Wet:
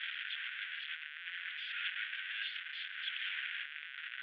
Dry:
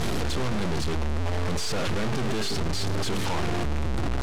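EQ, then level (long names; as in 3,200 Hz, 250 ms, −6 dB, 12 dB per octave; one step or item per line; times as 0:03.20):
Chebyshev band-pass filter 1,500–3,400 Hz, order 4
−1.0 dB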